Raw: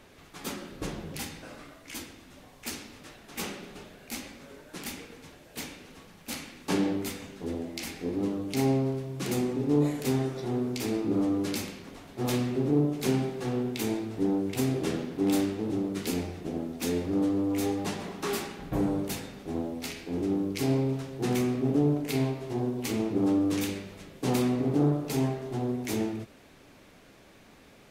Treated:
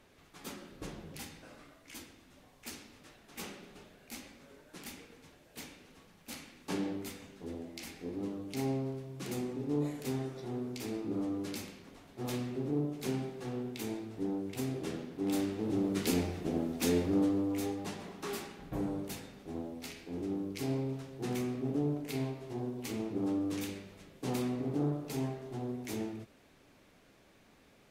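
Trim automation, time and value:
15.19 s -8.5 dB
15.95 s 0 dB
17.00 s 0 dB
17.77 s -8 dB

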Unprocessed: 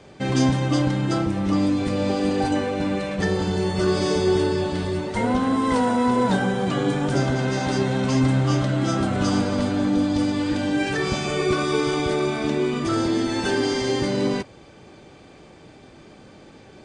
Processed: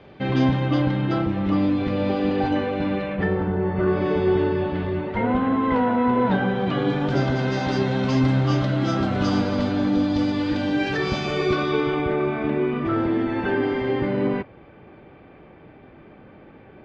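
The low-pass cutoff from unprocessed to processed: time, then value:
low-pass 24 dB/octave
2.94 s 3.6 kHz
3.56 s 1.8 kHz
4.19 s 2.8 kHz
6.09 s 2.8 kHz
7.37 s 5 kHz
11.46 s 5 kHz
12.09 s 2.5 kHz

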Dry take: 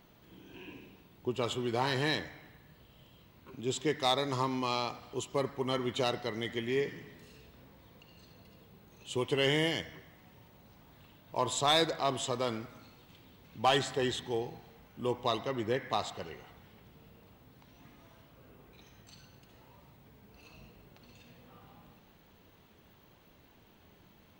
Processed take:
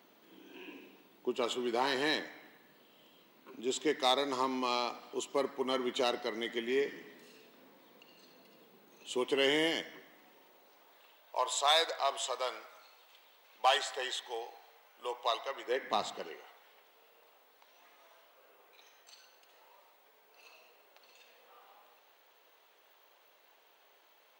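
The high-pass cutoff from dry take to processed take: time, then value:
high-pass 24 dB/octave
10.00 s 240 Hz
11.37 s 550 Hz
15.63 s 550 Hz
16.02 s 150 Hz
16.51 s 490 Hz

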